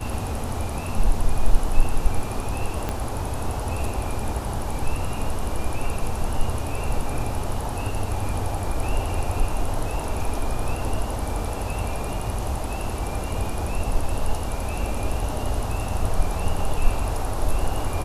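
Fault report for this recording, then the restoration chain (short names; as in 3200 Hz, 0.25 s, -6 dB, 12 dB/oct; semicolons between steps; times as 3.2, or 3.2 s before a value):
2.89 pop -12 dBFS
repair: de-click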